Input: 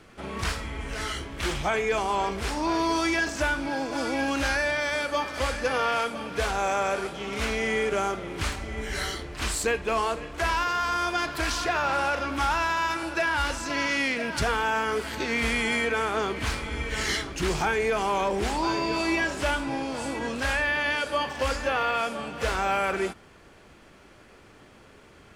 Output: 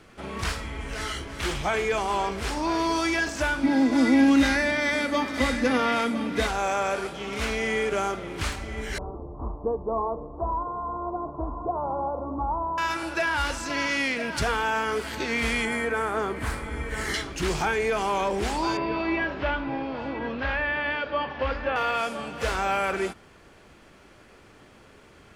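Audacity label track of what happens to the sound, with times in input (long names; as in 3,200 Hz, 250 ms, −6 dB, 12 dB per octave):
0.930000	1.580000	delay throw 340 ms, feedback 80%, level −11.5 dB
3.630000	6.470000	hollow resonant body resonances 250/2,000/3,700 Hz, height 17 dB, ringing for 65 ms
8.980000	12.780000	Butterworth low-pass 1,100 Hz 72 dB per octave
15.650000	17.140000	flat-topped bell 4,000 Hz −8.5 dB
18.770000	21.760000	Bessel low-pass filter 2,500 Hz, order 6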